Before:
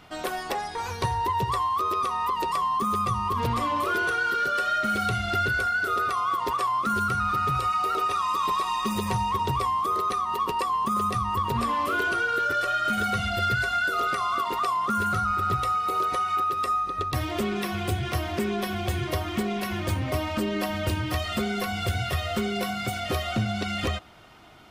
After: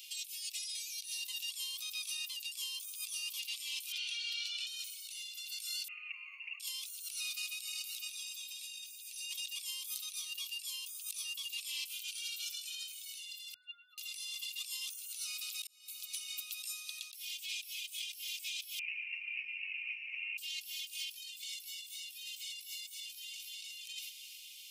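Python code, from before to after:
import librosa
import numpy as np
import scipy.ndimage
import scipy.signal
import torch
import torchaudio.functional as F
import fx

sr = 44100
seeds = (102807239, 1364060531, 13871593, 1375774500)

y = fx.bandpass_edges(x, sr, low_hz=800.0, high_hz=3500.0, at=(3.92, 4.67))
y = fx.resample_bad(y, sr, factor=8, down='none', up='filtered', at=(5.88, 6.6))
y = fx.spec_expand(y, sr, power=2.9, at=(13.54, 13.98))
y = fx.resample_bad(y, sr, factor=8, down='none', up='filtered', at=(18.79, 20.38))
y = fx.echo_throw(y, sr, start_s=23.0, length_s=0.49, ms=300, feedback_pct=30, wet_db=-4.0)
y = fx.edit(y, sr, fx.fade_in_span(start_s=15.67, length_s=1.37), tone=tone)
y = scipy.signal.sosfilt(scipy.signal.ellip(4, 1.0, 40, 2500.0, 'highpass', fs=sr, output='sos'), y)
y = np.diff(y, prepend=0.0)
y = fx.over_compress(y, sr, threshold_db=-52.0, ratio=-1.0)
y = y * librosa.db_to_amplitude(8.0)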